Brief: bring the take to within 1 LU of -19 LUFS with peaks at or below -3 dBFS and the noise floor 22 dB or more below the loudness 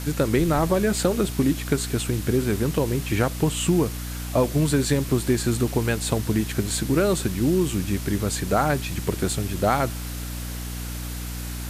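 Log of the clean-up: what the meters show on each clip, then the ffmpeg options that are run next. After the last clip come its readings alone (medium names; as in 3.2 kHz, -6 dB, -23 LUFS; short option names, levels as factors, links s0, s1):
hum 60 Hz; highest harmonic 300 Hz; hum level -29 dBFS; noise floor -32 dBFS; noise floor target -46 dBFS; loudness -24.0 LUFS; peak level -7.5 dBFS; loudness target -19.0 LUFS
-> -af "bandreject=f=60:t=h:w=4,bandreject=f=120:t=h:w=4,bandreject=f=180:t=h:w=4,bandreject=f=240:t=h:w=4,bandreject=f=300:t=h:w=4"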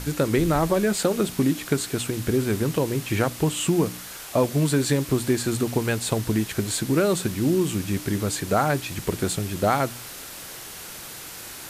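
hum not found; noise floor -39 dBFS; noise floor target -46 dBFS
-> -af "afftdn=nr=7:nf=-39"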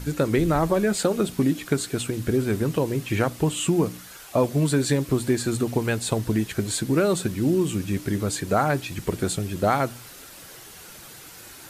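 noise floor -44 dBFS; noise floor target -46 dBFS
-> -af "afftdn=nr=6:nf=-44"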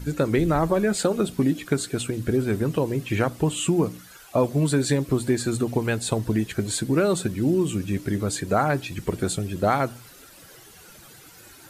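noise floor -48 dBFS; loudness -24.0 LUFS; peak level -8.5 dBFS; loudness target -19.0 LUFS
-> -af "volume=1.78"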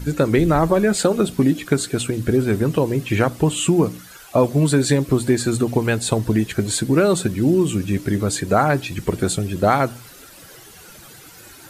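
loudness -19.0 LUFS; peak level -3.5 dBFS; noise floor -43 dBFS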